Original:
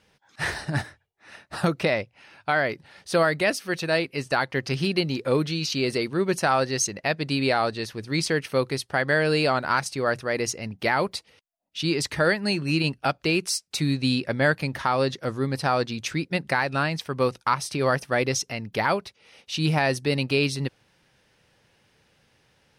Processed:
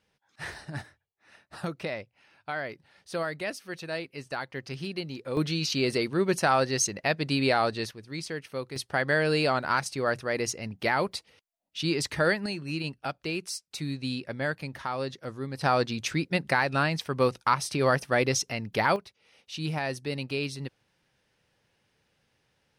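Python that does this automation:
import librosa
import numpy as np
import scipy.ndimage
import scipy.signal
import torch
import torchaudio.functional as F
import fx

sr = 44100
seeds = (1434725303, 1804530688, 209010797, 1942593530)

y = fx.gain(x, sr, db=fx.steps((0.0, -10.5), (5.37, -1.5), (7.91, -11.0), (8.76, -3.0), (12.46, -9.0), (15.61, -1.0), (18.96, -8.5)))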